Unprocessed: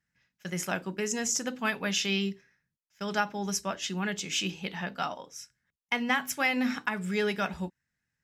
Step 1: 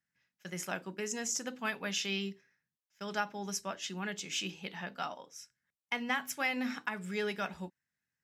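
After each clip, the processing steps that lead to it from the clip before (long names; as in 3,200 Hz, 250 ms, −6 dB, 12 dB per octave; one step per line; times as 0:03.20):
high-pass filter 170 Hz 6 dB per octave
level −5.5 dB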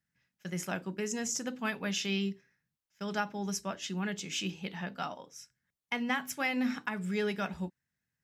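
low-shelf EQ 250 Hz +10 dB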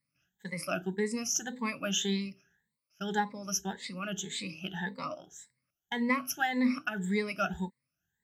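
rippled gain that drifts along the octave scale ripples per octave 0.96, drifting +1.8 Hz, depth 24 dB
level −4 dB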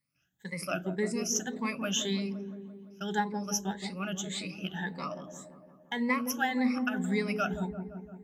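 delay with a low-pass on its return 171 ms, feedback 62%, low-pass 620 Hz, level −5 dB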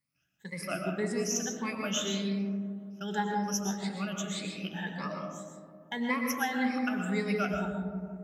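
convolution reverb RT60 1.2 s, pre-delay 80 ms, DRR 2.5 dB
level −2 dB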